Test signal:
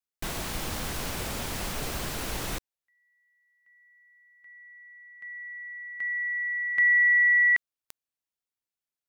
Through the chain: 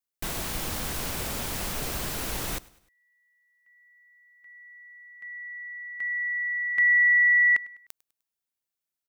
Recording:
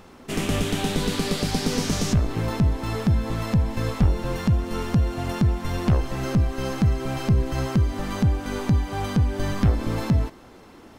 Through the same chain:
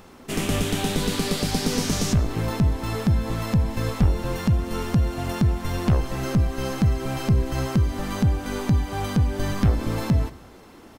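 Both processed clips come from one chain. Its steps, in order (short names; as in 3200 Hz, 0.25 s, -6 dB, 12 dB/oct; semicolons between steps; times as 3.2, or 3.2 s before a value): high shelf 9100 Hz +6 dB; on a send: feedback echo 0.101 s, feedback 46%, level -22.5 dB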